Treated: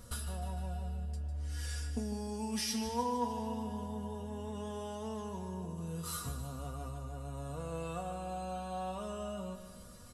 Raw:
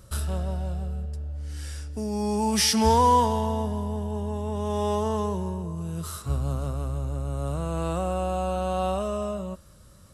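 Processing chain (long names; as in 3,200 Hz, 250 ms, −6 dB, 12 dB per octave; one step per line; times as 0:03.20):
downward compressor 12 to 1, threshold −34 dBFS, peak gain reduction 19 dB
tuned comb filter 240 Hz, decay 0.17 s, harmonics all, mix 90%
repeating echo 151 ms, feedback 55%, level −10.5 dB
level +10.5 dB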